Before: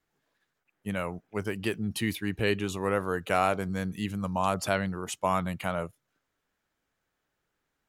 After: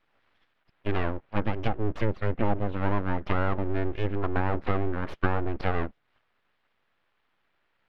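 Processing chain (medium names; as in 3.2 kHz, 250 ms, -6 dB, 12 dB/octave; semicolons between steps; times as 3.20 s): low-pass that closes with the level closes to 660 Hz, closed at -24 dBFS; in parallel at +2 dB: gain riding; on the sum: full-wave rectifier; distance through air 400 m; tape noise reduction on one side only encoder only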